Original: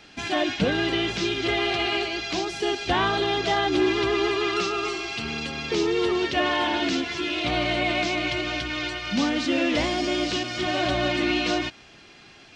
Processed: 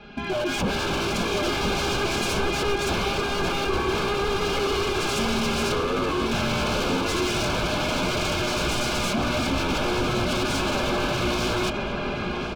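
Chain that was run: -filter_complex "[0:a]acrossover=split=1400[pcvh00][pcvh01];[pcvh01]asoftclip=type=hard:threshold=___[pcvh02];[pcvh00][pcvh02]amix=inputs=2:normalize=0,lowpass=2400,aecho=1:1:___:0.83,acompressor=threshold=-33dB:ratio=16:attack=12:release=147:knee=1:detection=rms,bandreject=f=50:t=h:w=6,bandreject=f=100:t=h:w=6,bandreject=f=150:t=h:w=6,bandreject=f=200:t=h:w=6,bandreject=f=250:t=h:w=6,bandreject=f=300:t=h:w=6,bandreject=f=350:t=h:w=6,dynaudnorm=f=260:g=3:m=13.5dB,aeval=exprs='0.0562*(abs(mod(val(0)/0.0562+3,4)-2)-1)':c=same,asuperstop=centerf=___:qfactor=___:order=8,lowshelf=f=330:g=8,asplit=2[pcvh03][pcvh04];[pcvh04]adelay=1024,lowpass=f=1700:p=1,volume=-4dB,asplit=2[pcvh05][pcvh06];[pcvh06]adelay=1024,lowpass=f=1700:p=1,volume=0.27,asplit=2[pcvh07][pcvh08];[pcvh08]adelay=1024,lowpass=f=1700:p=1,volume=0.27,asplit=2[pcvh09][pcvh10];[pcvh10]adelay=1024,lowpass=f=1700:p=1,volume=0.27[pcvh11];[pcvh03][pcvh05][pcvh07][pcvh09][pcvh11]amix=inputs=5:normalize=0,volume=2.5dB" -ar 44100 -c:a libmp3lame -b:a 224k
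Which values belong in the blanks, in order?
-28.5dB, 4.9, 1900, 5.5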